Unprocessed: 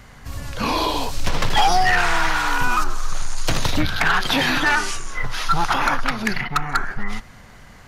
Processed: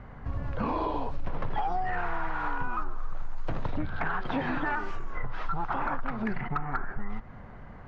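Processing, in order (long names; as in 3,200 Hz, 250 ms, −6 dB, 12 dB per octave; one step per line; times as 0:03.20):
low-pass filter 1,200 Hz 12 dB per octave
downward compressor 4 to 1, threshold −27 dBFS, peak gain reduction 13.5 dB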